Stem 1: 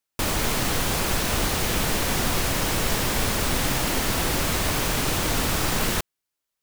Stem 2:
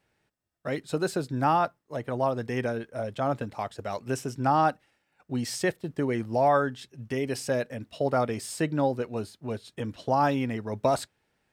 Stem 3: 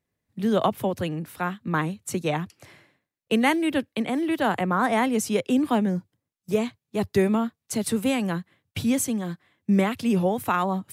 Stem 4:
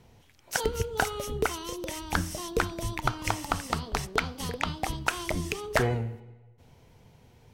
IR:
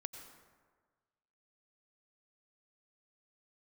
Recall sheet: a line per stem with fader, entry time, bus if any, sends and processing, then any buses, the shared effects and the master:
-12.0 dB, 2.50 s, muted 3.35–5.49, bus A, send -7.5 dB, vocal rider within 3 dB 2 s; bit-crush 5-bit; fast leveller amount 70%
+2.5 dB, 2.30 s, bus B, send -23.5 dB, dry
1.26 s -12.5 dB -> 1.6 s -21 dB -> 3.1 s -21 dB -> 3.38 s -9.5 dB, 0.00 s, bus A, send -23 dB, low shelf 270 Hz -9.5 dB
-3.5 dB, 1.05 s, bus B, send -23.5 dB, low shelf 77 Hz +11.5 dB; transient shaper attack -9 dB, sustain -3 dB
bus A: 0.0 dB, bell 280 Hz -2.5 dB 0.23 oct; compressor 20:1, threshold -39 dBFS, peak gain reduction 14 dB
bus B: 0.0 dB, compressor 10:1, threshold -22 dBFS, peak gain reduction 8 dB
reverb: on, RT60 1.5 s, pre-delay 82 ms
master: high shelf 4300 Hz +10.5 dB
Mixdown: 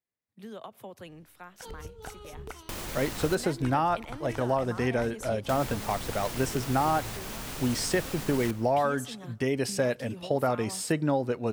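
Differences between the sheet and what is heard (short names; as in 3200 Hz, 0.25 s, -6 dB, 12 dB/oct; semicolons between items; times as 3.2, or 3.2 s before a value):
stem 4 -3.5 dB -> -12.0 dB; master: missing high shelf 4300 Hz +10.5 dB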